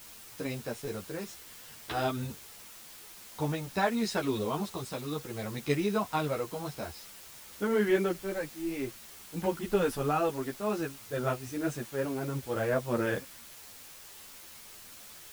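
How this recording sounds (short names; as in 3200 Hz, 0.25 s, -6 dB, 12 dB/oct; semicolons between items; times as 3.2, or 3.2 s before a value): tremolo triangle 0.55 Hz, depth 50%; a quantiser's noise floor 8-bit, dither triangular; a shimmering, thickened sound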